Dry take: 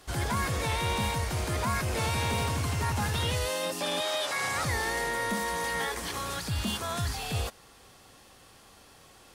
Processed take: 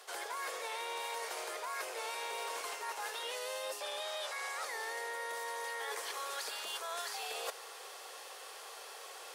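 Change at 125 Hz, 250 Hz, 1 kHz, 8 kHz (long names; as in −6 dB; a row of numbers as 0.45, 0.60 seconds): below −40 dB, −27.0 dB, −8.0 dB, −7.5 dB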